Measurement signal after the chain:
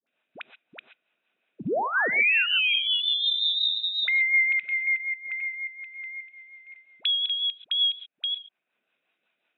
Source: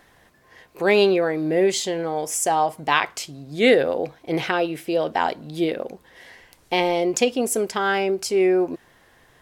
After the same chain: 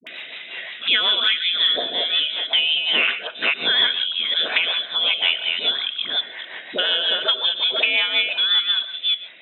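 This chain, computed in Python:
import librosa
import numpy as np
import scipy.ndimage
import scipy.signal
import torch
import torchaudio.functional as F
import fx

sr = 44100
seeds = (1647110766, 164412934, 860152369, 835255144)

y = fx.reverse_delay(x, sr, ms=267, wet_db=-4.5)
y = fx.peak_eq(y, sr, hz=1300.0, db=6.5, octaves=0.74)
y = fx.freq_invert(y, sr, carrier_hz=3800)
y = fx.rev_gated(y, sr, seeds[0], gate_ms=150, shape='rising', drr_db=11.5)
y = fx.dynamic_eq(y, sr, hz=470.0, q=3.3, threshold_db=-50.0, ratio=4.0, max_db=8)
y = scipy.signal.sosfilt(scipy.signal.butter(4, 190.0, 'highpass', fs=sr, output='sos'), y)
y = fx.small_body(y, sr, hz=(660.0, 1500.0, 2500.0), ring_ms=20, db=7)
y = fx.rotary(y, sr, hz=5.5)
y = fx.dispersion(y, sr, late='highs', ms=70.0, hz=580.0)
y = fx.band_squash(y, sr, depth_pct=70)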